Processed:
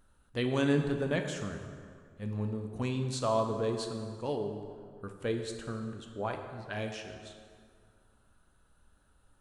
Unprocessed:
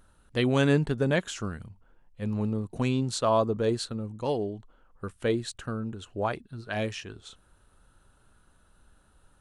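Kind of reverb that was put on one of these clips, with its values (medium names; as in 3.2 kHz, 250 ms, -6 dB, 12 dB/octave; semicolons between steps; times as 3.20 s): plate-style reverb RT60 2.1 s, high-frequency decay 0.65×, DRR 4.5 dB; trim -6.5 dB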